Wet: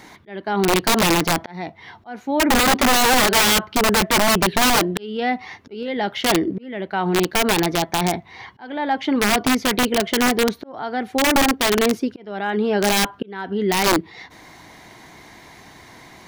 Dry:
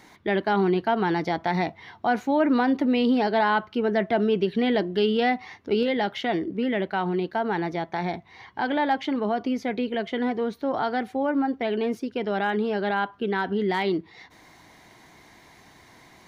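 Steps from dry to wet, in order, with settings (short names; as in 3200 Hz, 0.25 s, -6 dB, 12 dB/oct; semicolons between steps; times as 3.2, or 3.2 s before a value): auto swell 0.648 s; wrapped overs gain 19 dB; gain +8 dB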